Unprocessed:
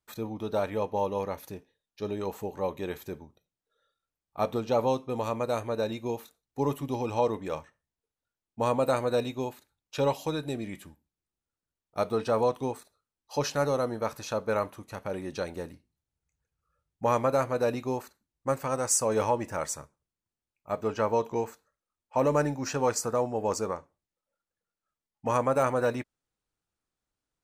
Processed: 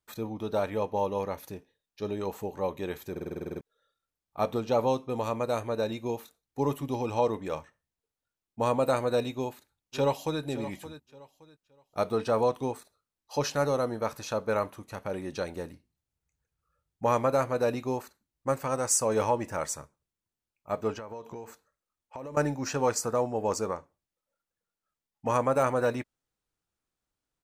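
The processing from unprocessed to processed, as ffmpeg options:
-filter_complex "[0:a]asplit=2[a][b];[b]afade=t=in:st=9.35:d=0.01,afade=t=out:st=10.42:d=0.01,aecho=0:1:570|1140|1710:0.223872|0.055968|0.013992[c];[a][c]amix=inputs=2:normalize=0,asettb=1/sr,asplit=3[d][e][f];[d]atrim=end=20.954[g];[e]atrim=start=20.95:end=22.37,asetpts=PTS-STARTPTS,afade=t=in:d=0.004:c=qsin,afade=t=out:st=1.416:d=0.004:c=qsin,acompressor=threshold=-37dB:ratio=8:attack=3.2:release=140:knee=1:detection=peak[h];[f]atrim=start=22.366[i];[g][h]acrossfade=d=0.004:c1=hsin:c2=qsin[j];[j][i]acrossfade=d=0.004:c1=qsin:c2=hsin,asplit=11[k][l][m][n][o][p][q][r][s][t][u];[k]atrim=end=3.162[v];[l]atrim=start=3.108:end=3.162[w];[m]atrim=start=3.108:end=3.162[x];[n]atrim=start=3.108:end=3.162[y];[o]atrim=start=3.108:end=3.162[z];[p]atrim=start=3.108:end=3.162[aa];[q]atrim=start=3.108:end=3.162[ab];[r]atrim=start=3.108:end=3.162[ac];[s]atrim=start=3.108:end=3.162[ad];[t]atrim=start=3.108:end=3.162[ae];[u]atrim=start=3.608[af];[v][w]acrossfade=d=0.004:c1=hsin:c2=hsin[ag];[ag][x]acrossfade=d=0.004:c1=hsin:c2=hsin[ah];[ah][y]acrossfade=d=0.004:c1=hsin:c2=hsin[ai];[ai][z]acrossfade=d=0.004:c1=hsin:c2=hsin[aj];[aj][aa]acrossfade=d=0.004:c1=hsin:c2=hsin[ak];[ak][ab]acrossfade=d=0.004:c1=hsin:c2=hsin[al];[al][ac]acrossfade=d=0.004:c1=hsin:c2=hsin[am];[am][ad]acrossfade=d=0.004:c1=hsin:c2=hsin[an];[an][ae]acrossfade=d=0.004:c1=hsin:c2=hsin[ao];[ao][af]acrossfade=d=0.004:c1=hsin:c2=hsin"

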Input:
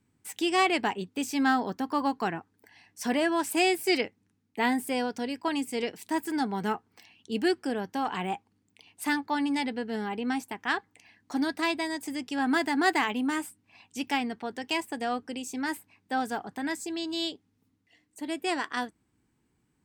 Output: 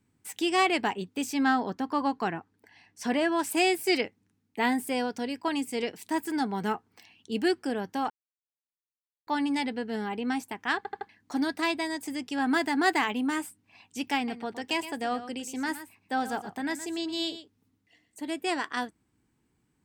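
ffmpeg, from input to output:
-filter_complex "[0:a]asettb=1/sr,asplit=3[a][b][c];[a]atrim=end=1.334[d];[b]atrim=start=1.33:end=3.39,asetpts=PTS-STARTPTS,afade=t=in:d=0.004:c=qsin,afade=t=out:st=2.056:d=0.004:c=qsin,highshelf=f=10k:g=-12[e];[c]atrim=start=3.386[f];[d][e]acrossfade=d=0.004:c1=hsin:c2=qsin[g];[g][f]acrossfade=d=0.004:c1=qsin:c2=hsin,asettb=1/sr,asplit=3[h][i][j];[h]atrim=end=14.164[k];[i]atrim=start=14.16:end=18.31,asetpts=PTS-STARTPTS,afade=t=in:d=0.004:c=qsin,afade=t=out:st=4.146:d=0.004:c=qsin,aecho=1:1:118:0.237,atrim=end_sample=183015[l];[j]atrim=start=18.306[m];[k][l]acrossfade=d=0.004:c1=hsin:c2=qsin[n];[n][m]acrossfade=d=0.004:c1=qsin:c2=hsin,asplit=7[o][p][q][r][s][t][u];[o]atrim=end=8.1,asetpts=PTS-STARTPTS,afade=t=out:st=8.096:d=0.004:c=hsin[v];[p]atrim=start=8.1:end=9.27,asetpts=PTS-STARTPTS,volume=0[w];[q]atrim=start=9.27:end=10.852,asetpts=PTS-STARTPTS,afade=t=in:d=0.004:c=hsin[x];[r]atrim=start=10.768:end=10.852[y];[s]atrim=start=10.768:end=10.852[z];[t]atrim=start=10.768:end=10.852[aa];[u]atrim=start=11.088[ab];[v][w][x]concat=n=3:v=0:a=1[ac];[ac][y]acrossfade=d=0.004:c1=hsin:c2=hsin[ad];[ad][z]acrossfade=d=0.004:c1=hsin:c2=hsin[ae];[ae][aa]acrossfade=d=0.004:c1=hsin:c2=hsin[af];[af][ab]acrossfade=d=0.004:c1=hsin:c2=hsin"

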